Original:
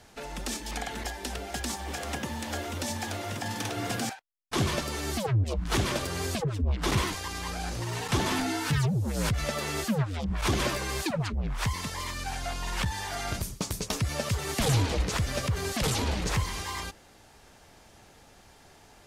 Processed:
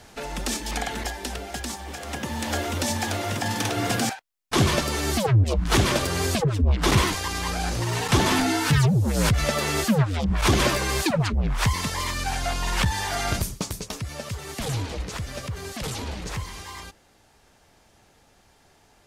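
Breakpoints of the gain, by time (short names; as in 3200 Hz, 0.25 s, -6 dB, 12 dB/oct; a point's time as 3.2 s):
0.86 s +6 dB
1.99 s -1 dB
2.46 s +7 dB
13.39 s +7 dB
13.97 s -3.5 dB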